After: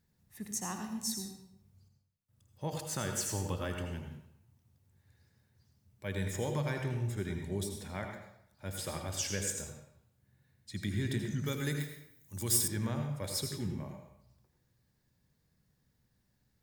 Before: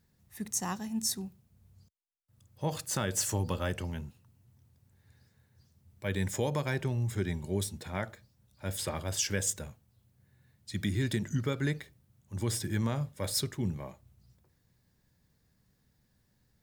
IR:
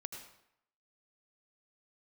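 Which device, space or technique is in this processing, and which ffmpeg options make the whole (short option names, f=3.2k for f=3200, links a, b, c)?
bathroom: -filter_complex "[1:a]atrim=start_sample=2205[a];[0:a][a]afir=irnorm=-1:irlink=0,asettb=1/sr,asplit=3[b][c][d];[b]atrim=end=11.464[e];[c]atrim=start=11.46:end=12.68,asetpts=PTS-STARTPTS,afade=t=in:d=0.004:c=qsin,afade=t=out:st=1.216:d=0.004:c=qsin,aemphasis=mode=production:type=75fm[f];[d]atrim=start=12.676[g];[e][f]acrossfade=d=0.004:c1=hsin:c2=qsin[h];[h][g]acrossfade=d=0.004:c1=qsin:c2=hsin,volume=-1dB"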